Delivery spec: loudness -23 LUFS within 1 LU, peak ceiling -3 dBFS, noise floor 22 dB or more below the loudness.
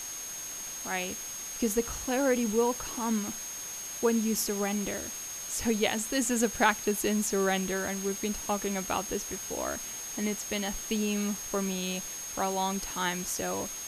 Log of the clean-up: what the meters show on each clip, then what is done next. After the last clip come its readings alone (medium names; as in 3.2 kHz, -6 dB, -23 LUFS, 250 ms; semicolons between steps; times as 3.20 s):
steady tone 6.5 kHz; tone level -38 dBFS; noise floor -39 dBFS; noise floor target -53 dBFS; loudness -30.5 LUFS; peak level -9.0 dBFS; loudness target -23.0 LUFS
-> band-stop 6.5 kHz, Q 30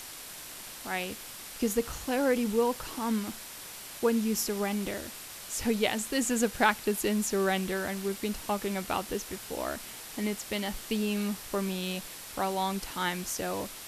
steady tone not found; noise floor -44 dBFS; noise floor target -54 dBFS
-> noise reduction 10 dB, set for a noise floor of -44 dBFS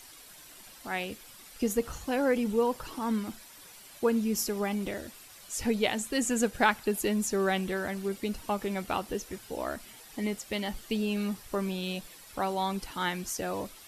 noise floor -51 dBFS; noise floor target -53 dBFS
-> noise reduction 6 dB, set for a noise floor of -51 dBFS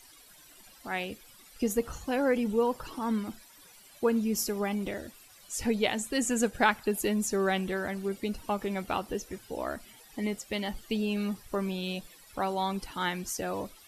noise floor -55 dBFS; loudness -31.5 LUFS; peak level -9.5 dBFS; loudness target -23.0 LUFS
-> trim +8.5 dB; peak limiter -3 dBFS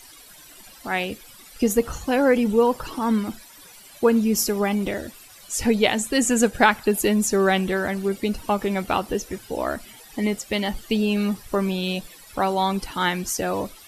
loudness -23.0 LUFS; peak level -3.0 dBFS; noise floor -47 dBFS